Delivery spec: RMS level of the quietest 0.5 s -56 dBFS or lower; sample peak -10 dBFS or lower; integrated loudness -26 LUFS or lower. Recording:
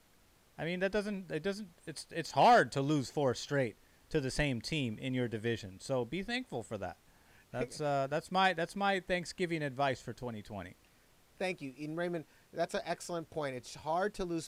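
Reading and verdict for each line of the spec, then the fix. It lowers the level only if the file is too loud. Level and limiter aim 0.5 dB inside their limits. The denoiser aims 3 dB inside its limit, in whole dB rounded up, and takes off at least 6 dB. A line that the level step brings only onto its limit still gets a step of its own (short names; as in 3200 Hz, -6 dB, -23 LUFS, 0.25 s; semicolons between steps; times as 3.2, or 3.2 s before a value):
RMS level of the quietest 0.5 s -66 dBFS: OK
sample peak -17.5 dBFS: OK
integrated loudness -35.0 LUFS: OK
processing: none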